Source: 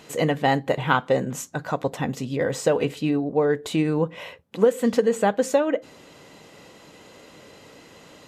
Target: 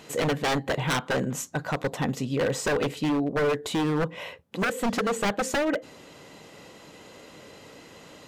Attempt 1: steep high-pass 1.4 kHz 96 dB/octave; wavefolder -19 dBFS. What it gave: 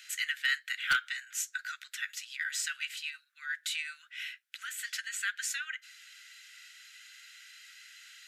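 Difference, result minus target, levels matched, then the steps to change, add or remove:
1 kHz band -6.5 dB
remove: steep high-pass 1.4 kHz 96 dB/octave

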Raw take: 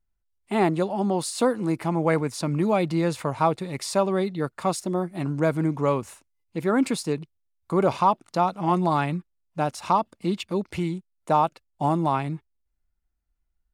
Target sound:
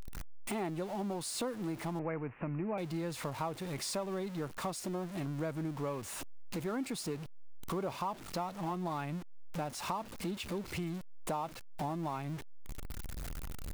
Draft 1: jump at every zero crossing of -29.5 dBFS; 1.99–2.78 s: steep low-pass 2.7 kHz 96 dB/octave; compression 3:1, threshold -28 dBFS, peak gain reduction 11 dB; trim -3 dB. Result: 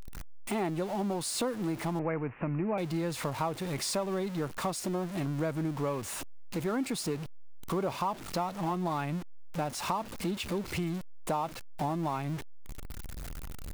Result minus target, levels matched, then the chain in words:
compression: peak gain reduction -5 dB
jump at every zero crossing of -29.5 dBFS; 1.99–2.78 s: steep low-pass 2.7 kHz 96 dB/octave; compression 3:1, threshold -35.5 dBFS, peak gain reduction 16 dB; trim -3 dB

